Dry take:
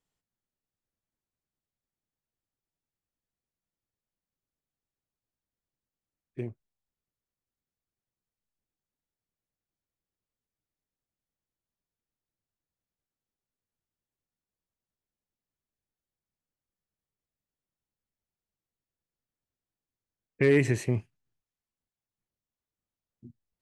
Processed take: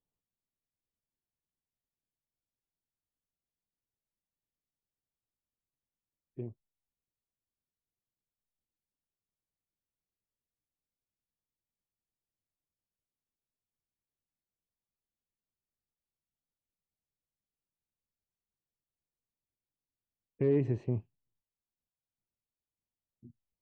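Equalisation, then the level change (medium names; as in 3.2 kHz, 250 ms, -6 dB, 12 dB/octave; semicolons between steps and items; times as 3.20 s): dynamic bell 2.9 kHz, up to -4 dB, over -42 dBFS, Q 1.2; tape spacing loss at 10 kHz 41 dB; high-order bell 1.7 kHz -9 dB 1 oct; -4.0 dB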